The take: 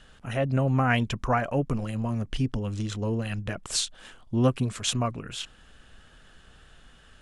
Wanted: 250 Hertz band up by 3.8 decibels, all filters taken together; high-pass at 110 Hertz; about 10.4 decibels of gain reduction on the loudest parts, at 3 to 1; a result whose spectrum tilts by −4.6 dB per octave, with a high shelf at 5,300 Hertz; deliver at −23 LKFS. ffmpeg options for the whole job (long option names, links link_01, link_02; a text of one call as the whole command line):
ffmpeg -i in.wav -af "highpass=110,equalizer=frequency=250:width_type=o:gain=4.5,highshelf=frequency=5300:gain=3.5,acompressor=threshold=-29dB:ratio=3,volume=9.5dB" out.wav